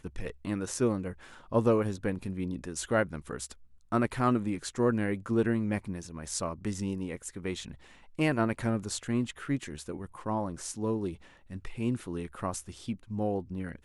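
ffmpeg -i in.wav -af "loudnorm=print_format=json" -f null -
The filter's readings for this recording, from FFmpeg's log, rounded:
"input_i" : "-32.7",
"input_tp" : "-12.0",
"input_lra" : "5.4",
"input_thresh" : "-43.0",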